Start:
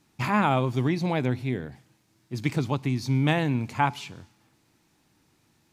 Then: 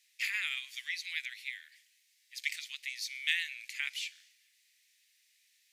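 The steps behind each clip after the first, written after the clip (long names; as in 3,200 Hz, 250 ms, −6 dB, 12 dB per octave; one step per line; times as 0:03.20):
Chebyshev high-pass filter 1,900 Hz, order 5
level +2 dB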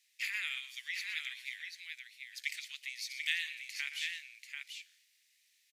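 multi-tap delay 121/739 ms −12/−5.5 dB
level −3 dB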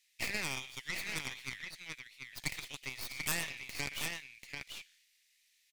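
stylus tracing distortion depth 0.36 ms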